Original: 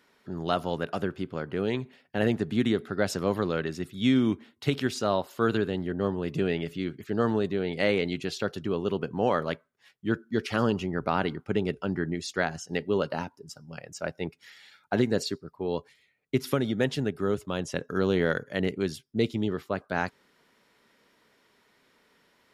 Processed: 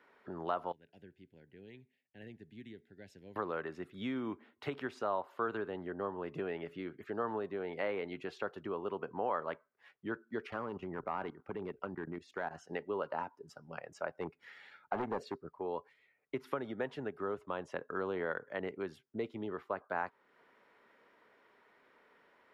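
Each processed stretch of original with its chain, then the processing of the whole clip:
0.72–3.36 Butterworth band-stop 1200 Hz, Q 1.3 + passive tone stack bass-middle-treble 6-0-2
10.5–12.51 low shelf 350 Hz +5 dB + level quantiser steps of 15 dB + hard clip -22.5 dBFS
14.17–15.53 low shelf 370 Hz +7 dB + overloaded stage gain 20.5 dB
whole clip: three-band isolator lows -12 dB, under 330 Hz, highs -19 dB, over 2400 Hz; compressor 2:1, threshold -45 dBFS; dynamic EQ 1000 Hz, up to +7 dB, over -56 dBFS, Q 1.7; gain +1.5 dB

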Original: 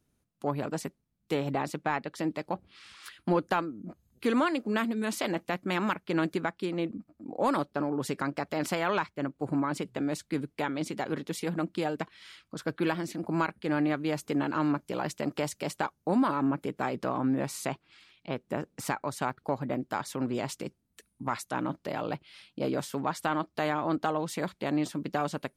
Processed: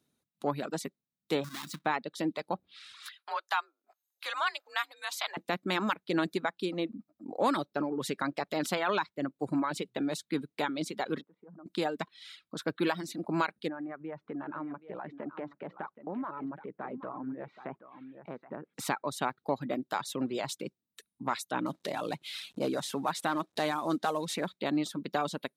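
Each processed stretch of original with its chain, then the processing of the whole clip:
1.44–1.86 half-waves squared off + band shelf 580 Hz -13 dB 1.3 oct + compressor 4:1, threshold -35 dBFS
3.07–5.37 HPF 770 Hz 24 dB/oct + bell 8900 Hz -5 dB 0.46 oct + frequency shift +47 Hz
11.21–11.66 LPF 1400 Hz 24 dB/oct + level quantiser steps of 24 dB
13.68–18.74 LPF 1900 Hz 24 dB/oct + compressor 2:1, threshold -40 dBFS + echo 0.774 s -10 dB
21.66–24.49 CVSD 64 kbps + upward compressor, threshold -31 dBFS
whole clip: HPF 160 Hz 12 dB/oct; bell 3800 Hz +9.5 dB 0.23 oct; reverb removal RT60 0.92 s

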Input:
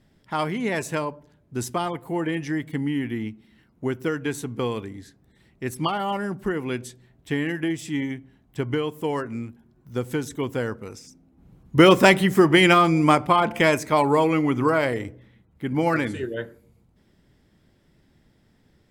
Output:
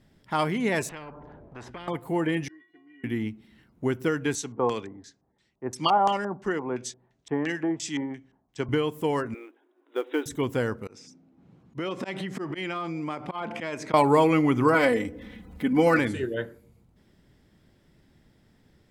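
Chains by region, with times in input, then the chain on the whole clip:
0.89–1.88 Bessel low-pass 510 Hz + compressor 1.5:1, threshold -44 dBFS + spectral compressor 4:1
2.48–3.04 HPF 220 Hz 24 dB/oct + air absorption 320 m + metallic resonator 350 Hz, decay 0.47 s, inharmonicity 0.008
4.35–8.69 low shelf 170 Hz -12 dB + LFO low-pass square 2.9 Hz 910–6300 Hz + three-band expander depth 40%
9.34–10.26 brick-wall FIR band-pass 270–3900 Hz + short-mantissa float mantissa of 4-bit
10.87–13.94 auto swell 0.139 s + compressor 10:1, threshold -28 dBFS + BPF 150–5600 Hz
14.74–15.99 comb 4 ms, depth 78% + upward compressor, threshold -31 dBFS
whole clip: dry

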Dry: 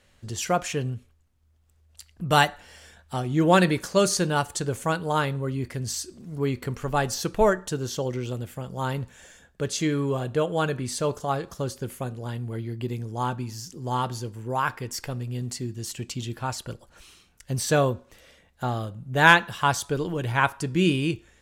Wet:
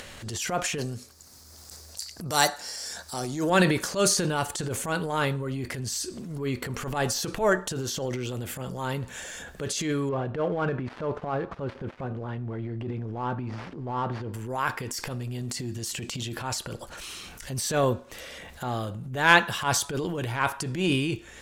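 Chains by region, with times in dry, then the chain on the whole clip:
0.78–3.5 HPF 210 Hz 6 dB/oct + resonant high shelf 3800 Hz +8 dB, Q 3
10.09–14.34 switching dead time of 0.091 ms + LPF 1800 Hz
whole clip: low shelf 200 Hz -7 dB; transient shaper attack -11 dB, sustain +7 dB; upward compressor, threshold -27 dBFS

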